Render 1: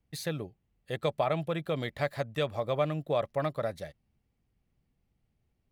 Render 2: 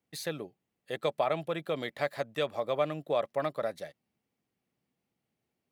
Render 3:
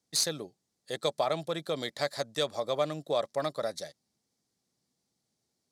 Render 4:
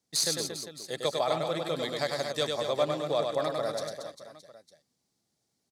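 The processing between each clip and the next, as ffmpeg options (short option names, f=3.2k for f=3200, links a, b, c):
-af "highpass=230"
-af "aexciter=amount=13.6:drive=4.9:freq=4.1k,adynamicsmooth=sensitivity=0.5:basefreq=4.4k"
-af "aecho=1:1:100|230|399|618.7|904.3:0.631|0.398|0.251|0.158|0.1"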